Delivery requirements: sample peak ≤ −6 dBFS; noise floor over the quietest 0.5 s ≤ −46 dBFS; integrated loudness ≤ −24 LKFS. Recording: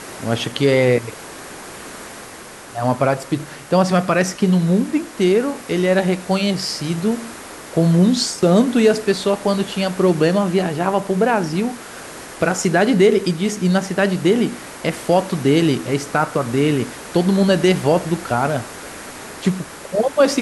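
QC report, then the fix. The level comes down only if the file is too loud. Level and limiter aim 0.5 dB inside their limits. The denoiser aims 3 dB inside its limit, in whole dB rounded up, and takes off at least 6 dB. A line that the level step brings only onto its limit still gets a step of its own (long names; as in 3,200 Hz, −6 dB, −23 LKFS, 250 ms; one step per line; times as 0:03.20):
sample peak −3.5 dBFS: out of spec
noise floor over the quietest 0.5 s −37 dBFS: out of spec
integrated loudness −18.0 LKFS: out of spec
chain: broadband denoise 6 dB, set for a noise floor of −37 dBFS
level −6.5 dB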